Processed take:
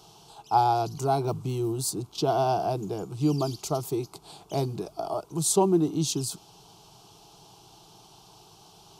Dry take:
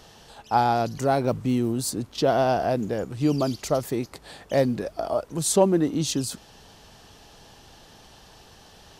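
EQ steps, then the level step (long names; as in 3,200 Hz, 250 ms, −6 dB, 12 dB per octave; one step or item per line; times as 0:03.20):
high-pass filter 50 Hz
phaser with its sweep stopped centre 360 Hz, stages 8
0.0 dB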